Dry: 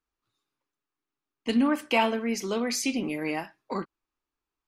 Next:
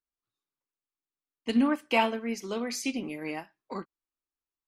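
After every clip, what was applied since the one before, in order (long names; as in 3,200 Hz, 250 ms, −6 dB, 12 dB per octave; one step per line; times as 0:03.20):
expander for the loud parts 1.5 to 1, over −43 dBFS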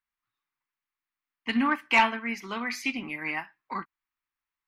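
octave-band graphic EQ 500/1,000/2,000/8,000 Hz −11/+8/+11/−10 dB
soft clipping −10 dBFS, distortion −18 dB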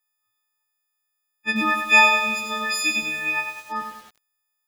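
every partial snapped to a pitch grid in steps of 6 semitones
feedback echo at a low word length 98 ms, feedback 55%, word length 7 bits, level −6 dB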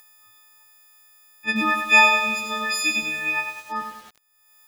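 upward compression, threshold −35 dBFS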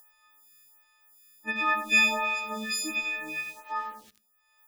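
on a send at −16.5 dB: convolution reverb RT60 0.70 s, pre-delay 3 ms
on the sum: phaser with staggered stages 1.4 Hz
level −3 dB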